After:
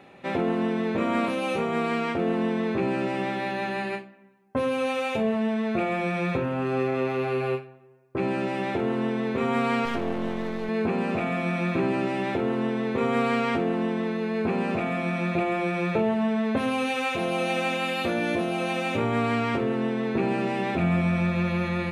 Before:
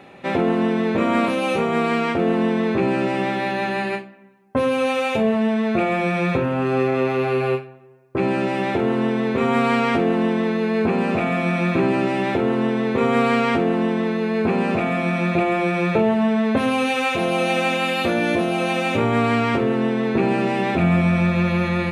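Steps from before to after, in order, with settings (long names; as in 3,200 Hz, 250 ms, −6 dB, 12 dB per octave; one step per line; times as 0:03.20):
0:09.85–0:10.69: gain on one half-wave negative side −12 dB
level −6 dB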